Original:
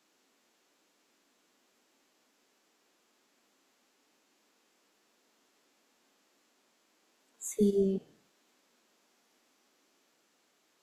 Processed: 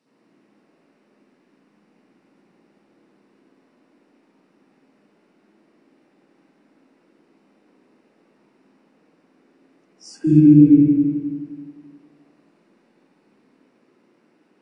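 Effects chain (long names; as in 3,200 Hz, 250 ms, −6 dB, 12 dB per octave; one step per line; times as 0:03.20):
parametric band 410 Hz +13.5 dB 1.5 octaves
notch filter 4,400 Hz, Q 11
spring reverb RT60 1.4 s, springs 39/50 ms, chirp 20 ms, DRR −9.5 dB
wrong playback speed 45 rpm record played at 33 rpm
level −3.5 dB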